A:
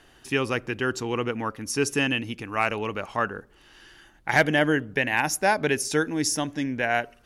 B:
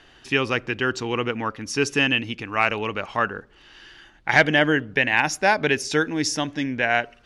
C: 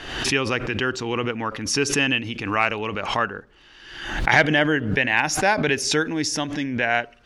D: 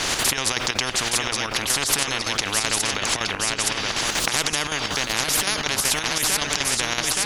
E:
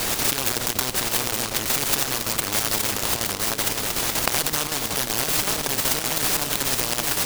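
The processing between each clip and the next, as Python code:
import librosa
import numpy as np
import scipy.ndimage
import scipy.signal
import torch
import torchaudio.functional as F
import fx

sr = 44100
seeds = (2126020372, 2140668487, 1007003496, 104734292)

y1 = scipy.signal.sosfilt(scipy.signal.butter(2, 3800.0, 'lowpass', fs=sr, output='sos'), x)
y1 = fx.high_shelf(y1, sr, hz=2600.0, db=10.0)
y1 = F.gain(torch.from_numpy(y1), 1.5).numpy()
y2 = fx.pre_swell(y1, sr, db_per_s=58.0)
y2 = F.gain(torch.from_numpy(y2), -1.0).numpy()
y3 = fx.echo_feedback(y2, sr, ms=869, feedback_pct=41, wet_db=-10.5)
y3 = fx.chopper(y3, sr, hz=5.3, depth_pct=60, duty_pct=75)
y3 = fx.spectral_comp(y3, sr, ratio=10.0)
y4 = fx.noise_mod_delay(y3, sr, seeds[0], noise_hz=4000.0, depth_ms=0.16)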